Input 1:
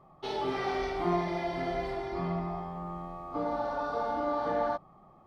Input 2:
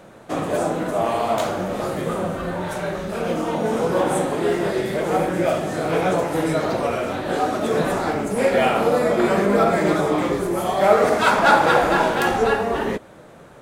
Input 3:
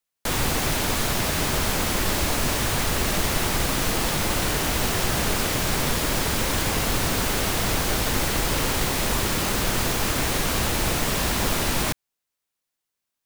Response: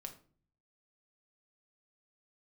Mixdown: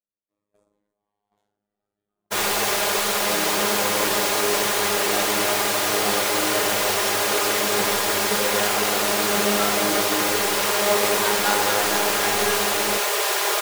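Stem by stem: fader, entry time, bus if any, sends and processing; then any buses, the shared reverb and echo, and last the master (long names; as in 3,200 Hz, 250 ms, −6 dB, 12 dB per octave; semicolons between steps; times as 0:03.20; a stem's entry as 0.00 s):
−10.5 dB, 1.10 s, no send, no processing
−6.5 dB, 0.00 s, send −3.5 dB, phases set to zero 103 Hz; phaser whose notches keep moving one way falling 0.29 Hz
+2.0 dB, 2.05 s, send −11 dB, elliptic high-pass filter 390 Hz, stop band 40 dB; comb filter 4.9 ms, depth 55%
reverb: on, RT60 0.45 s, pre-delay 5 ms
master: noise gate −23 dBFS, range −52 dB; level that may fall only so fast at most 52 dB per second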